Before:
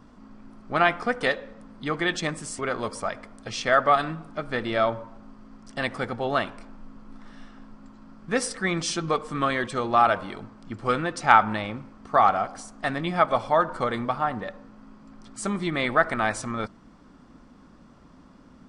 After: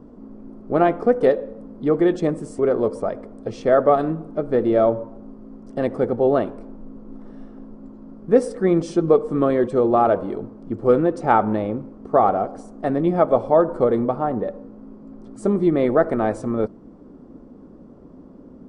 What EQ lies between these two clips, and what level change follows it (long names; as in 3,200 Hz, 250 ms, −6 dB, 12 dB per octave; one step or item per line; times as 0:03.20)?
tilt shelving filter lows +10 dB, about 1,100 Hz
parametric band 430 Hz +13.5 dB 1.5 octaves
high-shelf EQ 7,000 Hz +9.5 dB
−6.5 dB